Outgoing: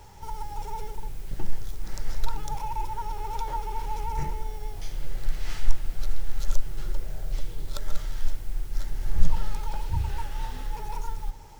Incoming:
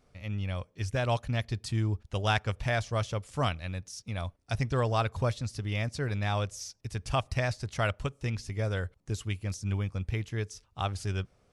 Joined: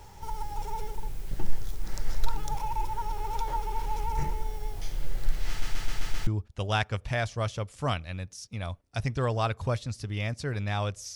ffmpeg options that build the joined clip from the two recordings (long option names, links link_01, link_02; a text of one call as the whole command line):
ffmpeg -i cue0.wav -i cue1.wav -filter_complex "[0:a]apad=whole_dur=11.15,atrim=end=11.15,asplit=6[link_01][link_02][link_03][link_04][link_05][link_06];[link_01]atrim=end=5.622[link_07];[link_02]atrim=start=5.488:end=5.622[link_08];[link_03]atrim=start=5.488:end=5.622[link_09];[link_04]atrim=start=5.488:end=5.622[link_10];[link_05]atrim=start=5.488:end=5.622[link_11];[link_06]atrim=start=5.488:end=5.622[link_12];[1:a]atrim=start=1.818:end=6.7[link_13];[link_07][link_08]acrossfade=duration=0.004:curve1=hsin:curve2=hsin[link_14];[link_14][link_09]acrossfade=duration=0.004:curve1=hsin:curve2=hsin[link_15];[link_15][link_10]acrossfade=duration=0.004:curve1=hsin:curve2=hsin[link_16];[link_16][link_11]acrossfade=duration=0.004:curve1=hsin:curve2=hsin[link_17];[link_17][link_12]acrossfade=duration=0.004:curve1=hsin:curve2=hsin[link_18];[link_18][link_13]acrossfade=duration=0.004:curve1=hsin:curve2=hsin" out.wav